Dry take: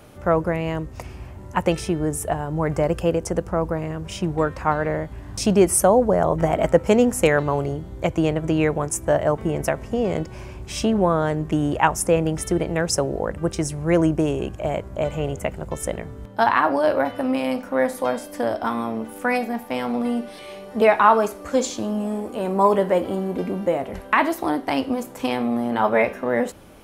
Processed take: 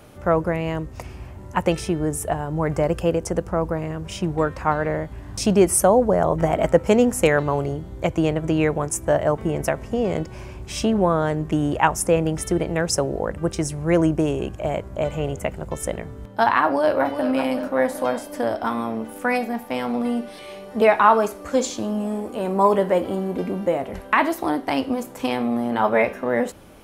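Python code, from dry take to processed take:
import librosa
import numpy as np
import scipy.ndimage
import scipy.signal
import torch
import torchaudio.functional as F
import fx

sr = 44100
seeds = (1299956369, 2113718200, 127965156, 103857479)

y = fx.echo_throw(x, sr, start_s=16.62, length_s=0.67, ms=380, feedback_pct=55, wet_db=-8.5)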